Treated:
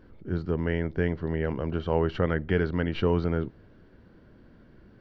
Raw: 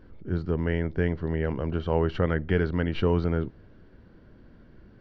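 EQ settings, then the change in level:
low-shelf EQ 74 Hz −5.5 dB
0.0 dB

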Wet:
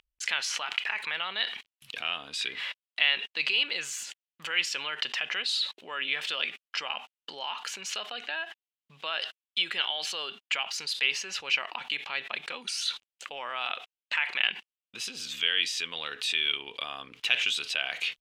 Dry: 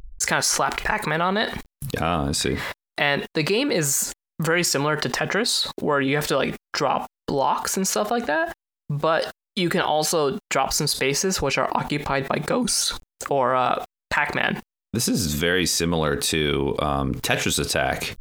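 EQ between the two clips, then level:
resonant band-pass 2,900 Hz, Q 3.9
+4.5 dB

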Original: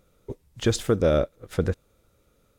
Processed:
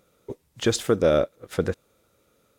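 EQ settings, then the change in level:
high-pass filter 220 Hz 6 dB per octave
+2.5 dB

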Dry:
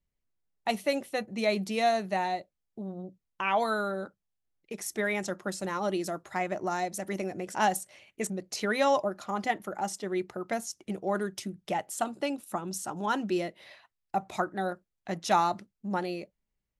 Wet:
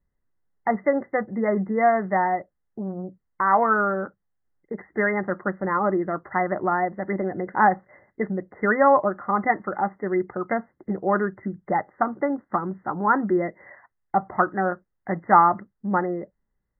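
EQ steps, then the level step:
dynamic equaliser 1,200 Hz, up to +6 dB, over −48 dBFS, Q 3.3
linear-phase brick-wall low-pass 2,100 Hz
notch filter 650 Hz, Q 12
+7.5 dB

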